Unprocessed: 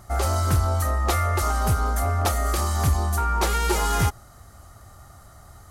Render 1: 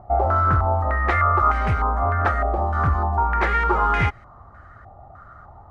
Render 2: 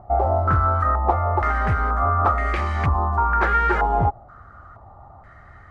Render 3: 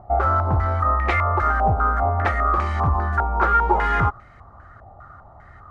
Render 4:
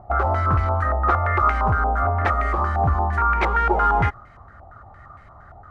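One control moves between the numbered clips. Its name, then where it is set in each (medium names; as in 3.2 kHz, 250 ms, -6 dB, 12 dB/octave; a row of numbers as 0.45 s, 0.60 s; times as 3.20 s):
step-sequenced low-pass, rate: 3.3 Hz, 2.1 Hz, 5 Hz, 8.7 Hz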